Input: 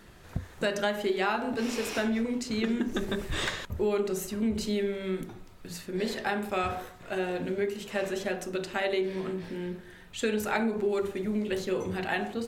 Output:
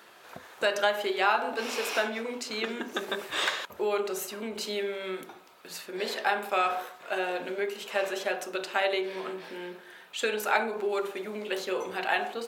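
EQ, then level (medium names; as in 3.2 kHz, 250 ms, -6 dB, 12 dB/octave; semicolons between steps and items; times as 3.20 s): high-pass 600 Hz 12 dB/octave; peaking EQ 1.9 kHz -5 dB 0.25 oct; peaking EQ 7.7 kHz -5.5 dB 1.6 oct; +6.0 dB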